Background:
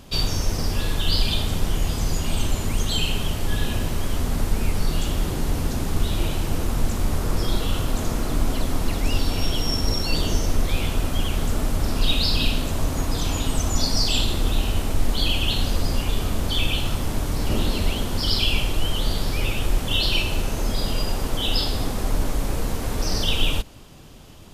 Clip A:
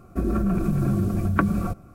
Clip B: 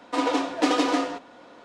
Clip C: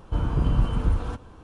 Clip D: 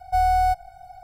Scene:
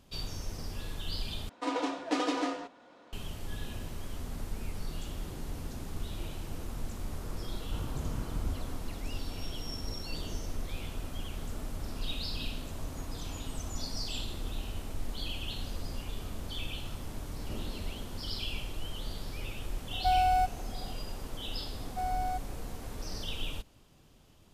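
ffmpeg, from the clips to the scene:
-filter_complex "[4:a]asplit=2[a][b];[0:a]volume=-15.5dB,asplit=2[c][d];[c]atrim=end=1.494[e];[2:a]atrim=end=1.64,asetpts=PTS-STARTPTS,volume=-8.5dB[f];[d]atrim=start=3.126[g];[3:a]atrim=end=1.43,asetpts=PTS-STARTPTS,volume=-14dB,afade=t=in:d=0.004:c=hsin,afade=t=out:st=1.426:d=0.004:c=hsin,adelay=7590[h];[a]atrim=end=1.03,asetpts=PTS-STARTPTS,volume=-6.5dB,afade=t=in:d=0.004:c=hsin,afade=t=out:st=1.026:d=0.004:c=hsin,adelay=19920[i];[b]atrim=end=1.03,asetpts=PTS-STARTPTS,volume=-14.5dB,afade=t=in:d=0.004:c=hsin,afade=t=out:st=1.026:d=0.004:c=hsin,adelay=21840[j];[e][f]acrossfade=d=0.004:c1=hsin:c2=hsin[k];[k][g]acrossfade=d=0.004:c1=hsin:c2=hsin[l];[l][h][i][j]amix=inputs=4:normalize=0"

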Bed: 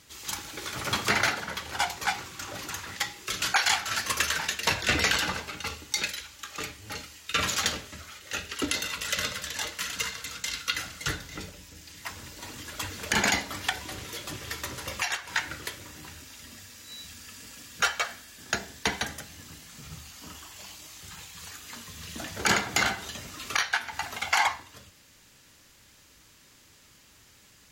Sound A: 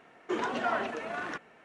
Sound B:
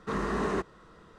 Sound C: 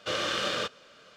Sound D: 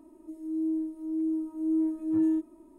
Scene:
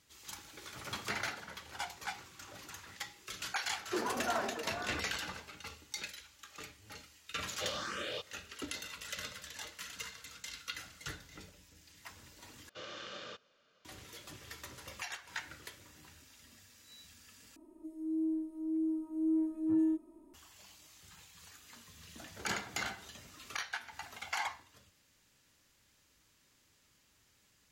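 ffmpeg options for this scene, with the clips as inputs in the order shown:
-filter_complex "[3:a]asplit=2[a][b];[0:a]volume=-13dB[c];[1:a]lowpass=1.5k[d];[a]asplit=2[e][f];[f]afreqshift=1.9[g];[e][g]amix=inputs=2:normalize=1[h];[b]aresample=16000,aresample=44100[i];[c]asplit=3[j][k][l];[j]atrim=end=12.694[m];[i]atrim=end=1.16,asetpts=PTS-STARTPTS,volume=-16.5dB[n];[k]atrim=start=13.846:end=17.564[o];[4:a]atrim=end=2.78,asetpts=PTS-STARTPTS,volume=-4.5dB[p];[l]atrim=start=20.336[q];[d]atrim=end=1.64,asetpts=PTS-STARTPTS,volume=-4dB,afade=t=in:d=0.004:c=hsin,afade=t=out:st=1.636:d=0.004:c=hsin,adelay=3630[r];[h]atrim=end=1.16,asetpts=PTS-STARTPTS,volume=-7dB,afade=t=in:d=0.004:c=hsin,afade=t=out:st=1.156:d=0.004:c=hsin,adelay=332514S[s];[m][n]acrossfade=d=0.004:c1=hsin:c2=hsin[t];[t][o]acrossfade=d=0.004:c1=hsin:c2=hsin[u];[u][p]acrossfade=d=0.004:c1=hsin:c2=hsin[v];[v][q]acrossfade=d=0.004:c1=hsin:c2=hsin[w];[w][r][s]amix=inputs=3:normalize=0"

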